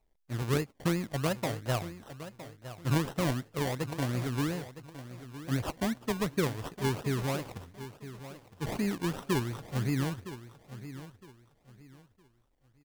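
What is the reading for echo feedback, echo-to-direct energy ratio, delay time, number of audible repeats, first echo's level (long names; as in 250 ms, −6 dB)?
28%, −13.0 dB, 962 ms, 2, −13.5 dB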